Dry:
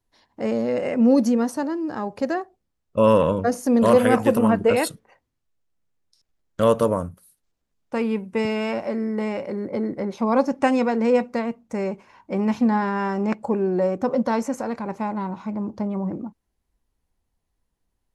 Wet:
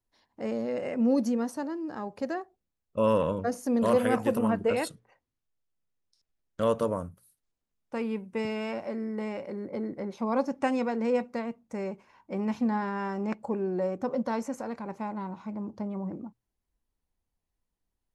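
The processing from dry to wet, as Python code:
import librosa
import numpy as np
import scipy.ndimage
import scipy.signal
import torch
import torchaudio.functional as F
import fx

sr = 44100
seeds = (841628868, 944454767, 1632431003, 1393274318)

y = fx.lowpass(x, sr, hz=10000.0, slope=12, at=(4.71, 6.95))
y = fx.hum_notches(y, sr, base_hz=60, count=2)
y = y * librosa.db_to_amplitude(-8.0)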